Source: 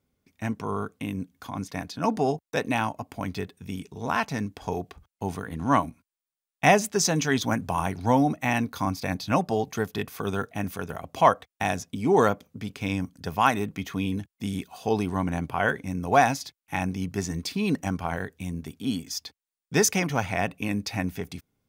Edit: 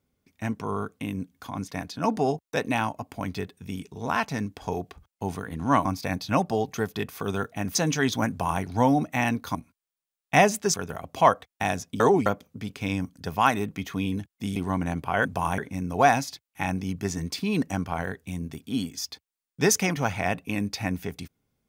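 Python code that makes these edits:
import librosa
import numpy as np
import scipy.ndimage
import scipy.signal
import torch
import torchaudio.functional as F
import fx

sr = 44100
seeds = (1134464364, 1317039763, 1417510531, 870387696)

y = fx.edit(x, sr, fx.swap(start_s=5.85, length_s=1.19, other_s=8.84, other_length_s=1.9),
    fx.duplicate(start_s=7.58, length_s=0.33, to_s=15.71),
    fx.reverse_span(start_s=12.0, length_s=0.26),
    fx.cut(start_s=14.56, length_s=0.46), tone=tone)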